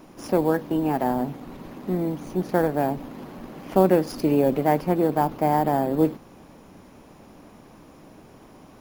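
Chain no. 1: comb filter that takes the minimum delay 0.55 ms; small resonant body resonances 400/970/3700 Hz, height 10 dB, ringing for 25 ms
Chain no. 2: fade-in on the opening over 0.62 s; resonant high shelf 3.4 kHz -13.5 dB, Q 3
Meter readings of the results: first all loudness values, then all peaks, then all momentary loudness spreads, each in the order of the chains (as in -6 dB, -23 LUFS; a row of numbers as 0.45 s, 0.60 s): -20.5 LUFS, -23.0 LUFS; -2.5 dBFS, -6.0 dBFS; 16 LU, 18 LU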